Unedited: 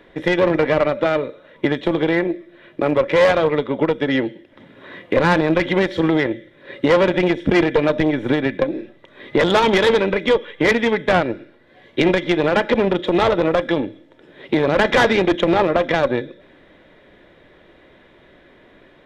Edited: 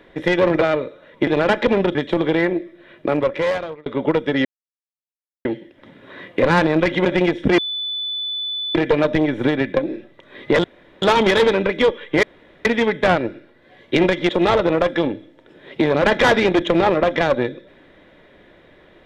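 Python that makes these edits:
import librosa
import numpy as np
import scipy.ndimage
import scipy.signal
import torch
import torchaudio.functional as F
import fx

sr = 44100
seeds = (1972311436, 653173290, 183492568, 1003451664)

y = fx.edit(x, sr, fx.cut(start_s=0.61, length_s=0.42),
    fx.fade_out_span(start_s=2.8, length_s=0.8),
    fx.insert_silence(at_s=4.19, length_s=1.0),
    fx.cut(start_s=5.79, length_s=1.28),
    fx.insert_tone(at_s=7.6, length_s=1.17, hz=3490.0, db=-22.5),
    fx.insert_room_tone(at_s=9.49, length_s=0.38),
    fx.insert_room_tone(at_s=10.7, length_s=0.42),
    fx.move(start_s=12.34, length_s=0.68, to_s=1.69), tone=tone)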